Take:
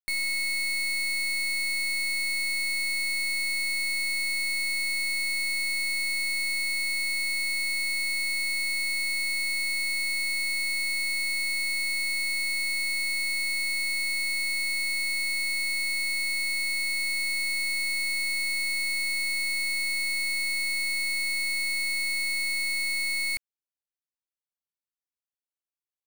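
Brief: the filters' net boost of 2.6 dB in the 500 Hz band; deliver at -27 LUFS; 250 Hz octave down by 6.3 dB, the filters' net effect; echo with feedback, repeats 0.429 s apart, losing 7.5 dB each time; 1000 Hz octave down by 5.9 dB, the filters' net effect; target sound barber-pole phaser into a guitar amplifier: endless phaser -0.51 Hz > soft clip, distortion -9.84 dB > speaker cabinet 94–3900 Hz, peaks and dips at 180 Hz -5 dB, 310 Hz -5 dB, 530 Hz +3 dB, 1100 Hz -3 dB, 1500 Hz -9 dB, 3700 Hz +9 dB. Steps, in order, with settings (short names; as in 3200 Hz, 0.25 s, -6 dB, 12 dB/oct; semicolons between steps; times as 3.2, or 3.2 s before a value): bell 250 Hz -3.5 dB; bell 500 Hz +5 dB; bell 1000 Hz -6 dB; feedback echo 0.429 s, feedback 42%, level -7.5 dB; endless phaser -0.51 Hz; soft clip -35 dBFS; speaker cabinet 94–3900 Hz, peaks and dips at 180 Hz -5 dB, 310 Hz -5 dB, 530 Hz +3 dB, 1100 Hz -3 dB, 1500 Hz -9 dB, 3700 Hz +9 dB; gain +11.5 dB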